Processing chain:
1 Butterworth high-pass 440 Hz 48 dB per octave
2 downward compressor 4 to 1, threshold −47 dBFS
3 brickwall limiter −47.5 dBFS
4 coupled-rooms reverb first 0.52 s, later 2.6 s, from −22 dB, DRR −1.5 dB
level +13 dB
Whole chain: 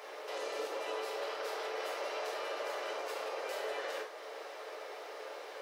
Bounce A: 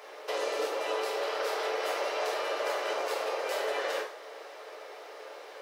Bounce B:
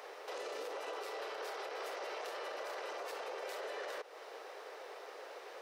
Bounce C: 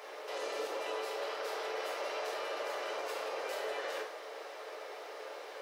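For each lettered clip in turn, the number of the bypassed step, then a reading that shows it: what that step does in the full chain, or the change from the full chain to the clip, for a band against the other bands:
3, average gain reduction 4.5 dB
4, change in crest factor −3.5 dB
2, average gain reduction 5.5 dB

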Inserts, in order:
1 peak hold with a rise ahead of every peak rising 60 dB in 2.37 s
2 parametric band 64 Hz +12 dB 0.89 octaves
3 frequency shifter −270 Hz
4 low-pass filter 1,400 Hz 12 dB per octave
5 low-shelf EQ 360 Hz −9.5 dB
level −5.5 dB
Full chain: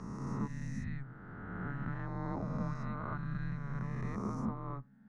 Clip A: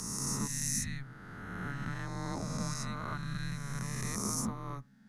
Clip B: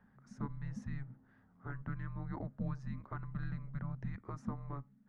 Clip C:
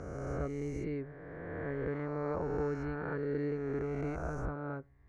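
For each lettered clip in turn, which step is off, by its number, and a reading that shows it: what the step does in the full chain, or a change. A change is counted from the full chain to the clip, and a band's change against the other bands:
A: 4, 2 kHz band +5.0 dB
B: 1, 125 Hz band +3.5 dB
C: 3, 500 Hz band +12.5 dB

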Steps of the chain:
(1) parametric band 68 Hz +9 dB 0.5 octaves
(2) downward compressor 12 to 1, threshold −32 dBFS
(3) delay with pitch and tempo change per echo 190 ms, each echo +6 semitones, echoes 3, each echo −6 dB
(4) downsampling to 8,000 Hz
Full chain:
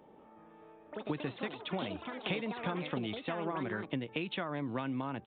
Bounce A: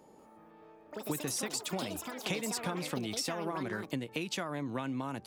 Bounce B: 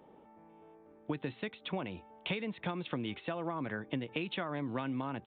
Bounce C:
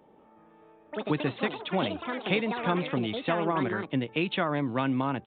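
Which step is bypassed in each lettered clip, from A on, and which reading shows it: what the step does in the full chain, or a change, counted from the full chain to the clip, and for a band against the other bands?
4, 4 kHz band +4.0 dB
3, change in momentary loudness spread −1 LU
2, average gain reduction 5.5 dB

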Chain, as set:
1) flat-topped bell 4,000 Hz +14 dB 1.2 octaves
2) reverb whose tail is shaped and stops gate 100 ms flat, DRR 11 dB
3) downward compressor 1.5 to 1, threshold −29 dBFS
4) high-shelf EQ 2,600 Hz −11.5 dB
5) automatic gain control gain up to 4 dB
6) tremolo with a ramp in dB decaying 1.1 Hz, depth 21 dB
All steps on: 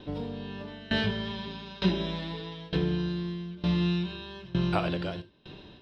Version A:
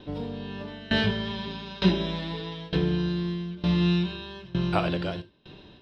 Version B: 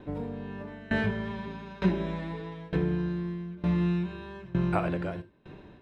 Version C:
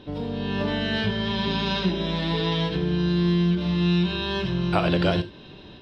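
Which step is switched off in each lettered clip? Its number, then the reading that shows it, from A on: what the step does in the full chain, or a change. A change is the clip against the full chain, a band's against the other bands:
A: 3, average gain reduction 3.0 dB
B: 1, 4 kHz band −13.0 dB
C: 6, change in momentary loudness spread −8 LU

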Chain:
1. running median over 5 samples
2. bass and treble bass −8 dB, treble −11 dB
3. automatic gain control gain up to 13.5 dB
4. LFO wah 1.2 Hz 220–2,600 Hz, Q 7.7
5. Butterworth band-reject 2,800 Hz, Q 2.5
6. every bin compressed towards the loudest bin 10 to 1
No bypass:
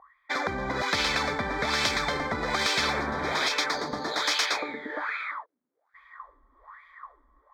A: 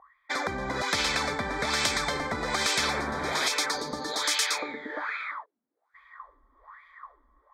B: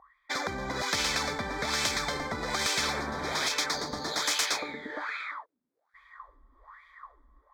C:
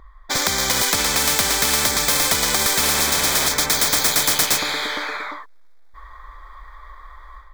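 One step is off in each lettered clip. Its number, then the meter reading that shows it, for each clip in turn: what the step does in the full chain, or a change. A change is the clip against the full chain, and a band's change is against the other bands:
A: 1, 8 kHz band +6.0 dB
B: 2, change in crest factor +2.0 dB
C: 4, 8 kHz band +15.0 dB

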